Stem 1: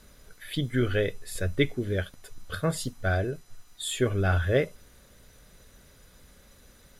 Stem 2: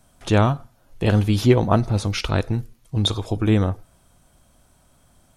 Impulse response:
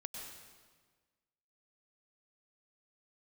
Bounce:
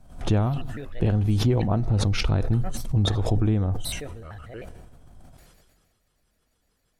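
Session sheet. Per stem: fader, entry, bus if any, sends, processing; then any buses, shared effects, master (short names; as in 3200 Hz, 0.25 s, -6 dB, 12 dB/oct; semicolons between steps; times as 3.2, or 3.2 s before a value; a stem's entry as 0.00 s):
-18.5 dB, 0.00 s, send -13 dB, shaped vibrato square 6.5 Hz, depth 250 cents
-4.0 dB, 0.00 s, no send, compressor 10:1, threshold -21 dBFS, peak gain reduction 12.5 dB; tilt -2.5 dB/oct; backwards sustainer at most 130 dB/s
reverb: on, RT60 1.5 s, pre-delay 92 ms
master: bell 750 Hz +4.5 dB 0.23 oct; sustainer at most 34 dB/s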